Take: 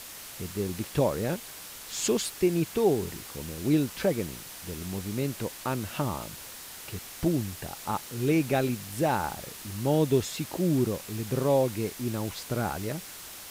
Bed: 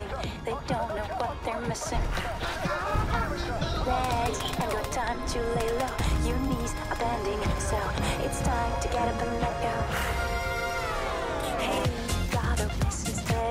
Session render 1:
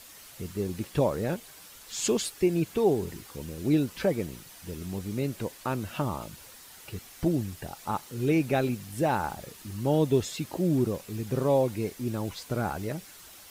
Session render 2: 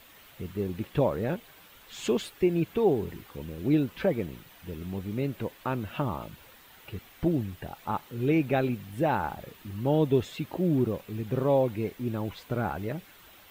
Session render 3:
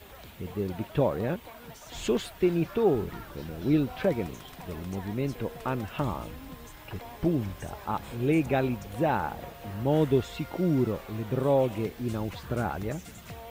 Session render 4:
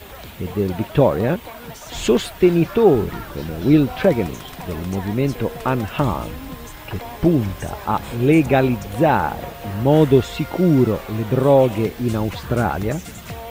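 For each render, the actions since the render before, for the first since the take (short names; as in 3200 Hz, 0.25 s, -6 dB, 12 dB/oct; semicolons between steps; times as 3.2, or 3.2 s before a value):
denoiser 8 dB, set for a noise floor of -44 dBFS
band shelf 7400 Hz -12 dB
add bed -16 dB
gain +10.5 dB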